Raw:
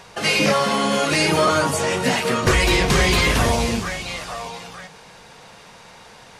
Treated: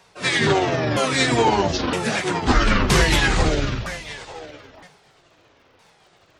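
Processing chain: sawtooth pitch modulation -11.5 st, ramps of 965 ms; crackle 78 per s -45 dBFS; three bands expanded up and down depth 40%

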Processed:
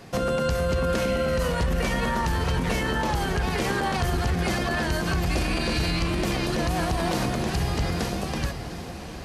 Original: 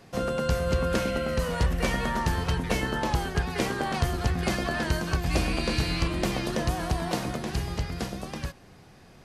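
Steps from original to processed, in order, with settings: echo that smears into a reverb 760 ms, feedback 49%, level -12 dB; peak limiter -23.5 dBFS, peak gain reduction 10 dB; trim +7 dB

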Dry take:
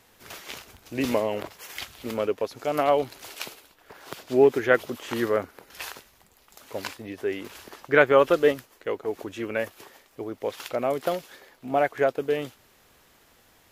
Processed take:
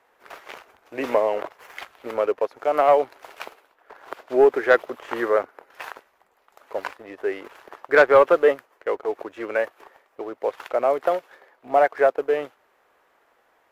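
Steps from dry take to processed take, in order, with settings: three-band isolator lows -22 dB, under 390 Hz, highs -18 dB, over 2 kHz; waveshaping leveller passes 1; trim +3.5 dB

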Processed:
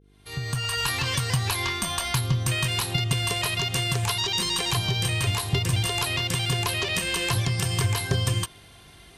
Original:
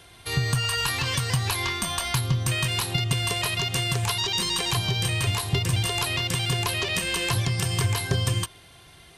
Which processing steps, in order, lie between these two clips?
fade-in on the opening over 0.87 s; mains buzz 50 Hz, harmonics 9, -58 dBFS -4 dB/octave

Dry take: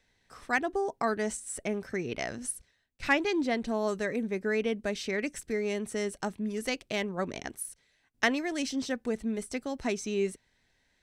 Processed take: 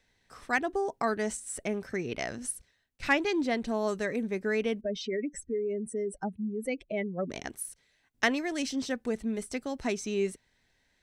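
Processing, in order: 4.81–7.30 s: spectral contrast enhancement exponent 2.4

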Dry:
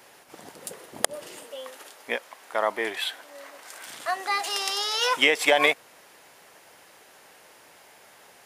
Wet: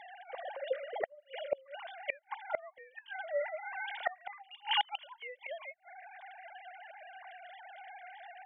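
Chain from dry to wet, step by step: formants replaced by sine waves; comb of notches 1.3 kHz; inverted gate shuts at -27 dBFS, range -34 dB; trim +9 dB

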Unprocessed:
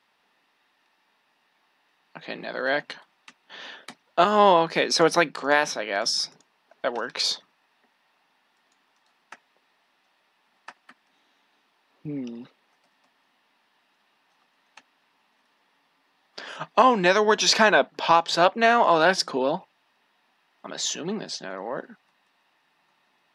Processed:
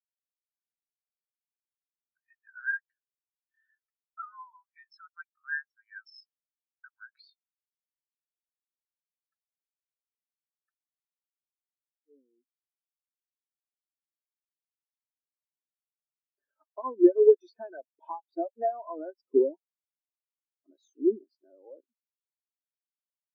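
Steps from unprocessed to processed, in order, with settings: compression 4:1, threshold -30 dBFS, peak gain reduction 15.5 dB; high-pass sweep 1.4 kHz -> 300 Hz, 11.17–12.69 s; spectral contrast expander 4:1; trim +4 dB

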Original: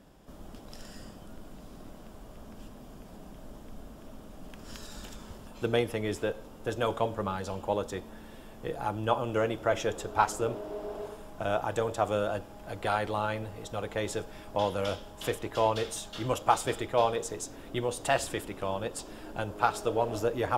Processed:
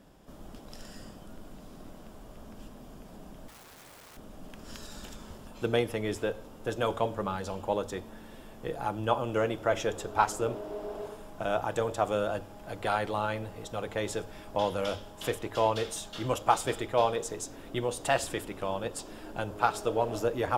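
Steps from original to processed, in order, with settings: 3.48–4.17 s: integer overflow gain 47 dB; hum notches 50/100 Hz

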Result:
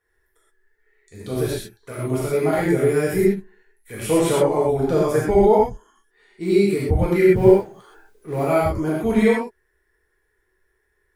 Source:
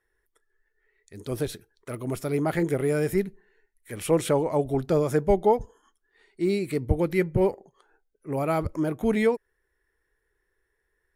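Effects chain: 7.28–8.44 s: companding laws mixed up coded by mu; gated-style reverb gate 150 ms flat, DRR -7 dB; trim -1.5 dB

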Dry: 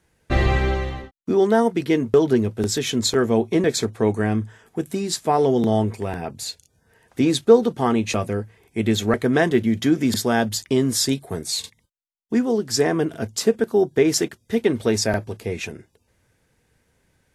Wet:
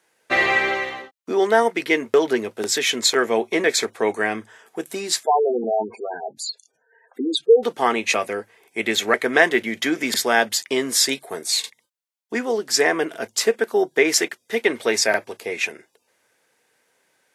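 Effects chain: high-pass 480 Hz 12 dB/octave; 5.23–7.63 s: spectral gate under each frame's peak -10 dB strong; dynamic bell 2.1 kHz, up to +8 dB, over -45 dBFS, Q 2; trim +3.5 dB

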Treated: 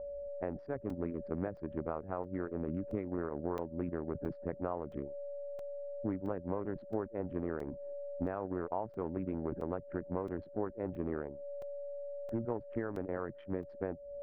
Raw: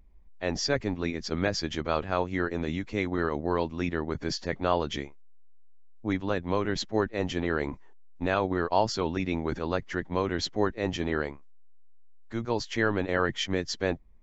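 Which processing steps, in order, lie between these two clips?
local Wiener filter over 41 samples; whistle 570 Hz -44 dBFS; tilt EQ +2 dB/octave; compression 5:1, threshold -39 dBFS, peak gain reduction 18 dB; Bessel low-pass 860 Hz, order 4; crackling interface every 0.67 s, samples 128, zero, from 0.90 s; trim +7 dB

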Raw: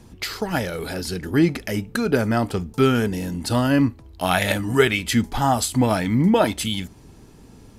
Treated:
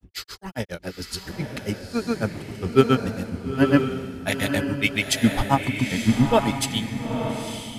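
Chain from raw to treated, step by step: granulator 108 ms, grains 7.3 per s, pitch spread up and down by 0 st; echo that smears into a reverb 917 ms, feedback 41%, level -4 dB; three bands expanded up and down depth 40%; trim +1.5 dB

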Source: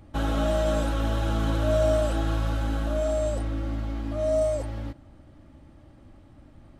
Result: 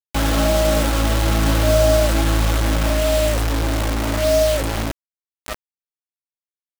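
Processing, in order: echo that smears into a reverb 1056 ms, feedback 50%, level -15.5 dB; bit crusher 5-bit; trim +7 dB

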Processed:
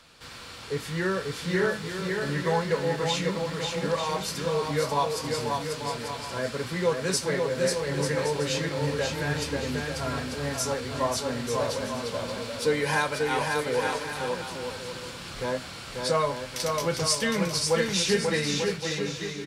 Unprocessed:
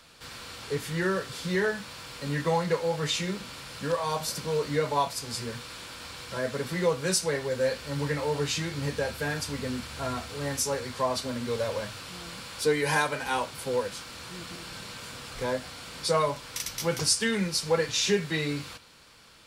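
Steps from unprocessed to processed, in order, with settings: treble shelf 11 kHz -7.5 dB; bouncing-ball echo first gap 540 ms, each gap 0.65×, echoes 5

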